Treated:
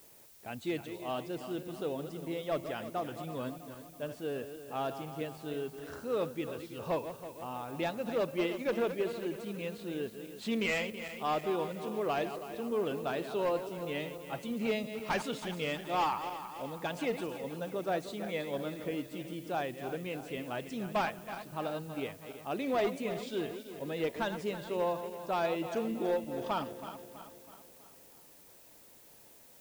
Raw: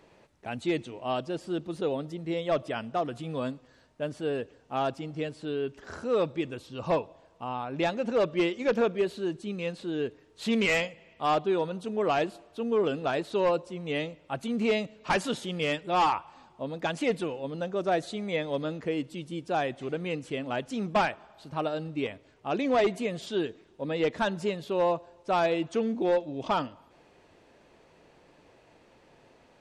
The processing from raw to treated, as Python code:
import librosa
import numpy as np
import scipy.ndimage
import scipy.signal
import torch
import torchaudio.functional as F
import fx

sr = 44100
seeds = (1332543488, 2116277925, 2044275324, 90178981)

y = fx.reverse_delay_fb(x, sr, ms=163, feedback_pct=70, wet_db=-10)
y = fx.dmg_noise_colour(y, sr, seeds[0], colour='blue', level_db=-52.0)
y = y * 10.0 ** (-6.5 / 20.0)